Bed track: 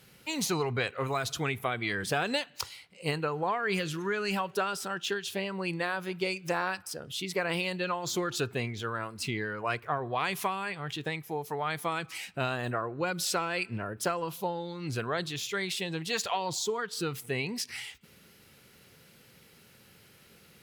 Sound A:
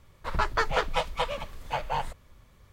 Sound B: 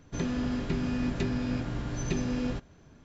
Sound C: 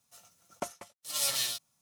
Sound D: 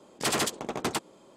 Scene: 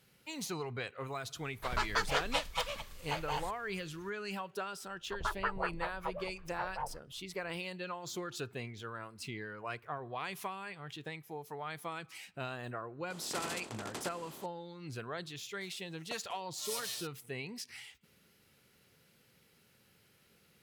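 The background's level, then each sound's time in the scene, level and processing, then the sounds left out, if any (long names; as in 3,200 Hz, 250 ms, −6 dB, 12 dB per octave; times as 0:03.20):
bed track −9.5 dB
0:01.38: mix in A −9.5 dB + high-shelf EQ 2,200 Hz +11.5 dB
0:04.86: mix in A −13.5 dB + auto-filter low-pass sine 5.3 Hz 410–1,700 Hz
0:13.10: mix in D −16.5 dB + compressor on every frequency bin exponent 0.4
0:15.49: mix in C −10 dB
not used: B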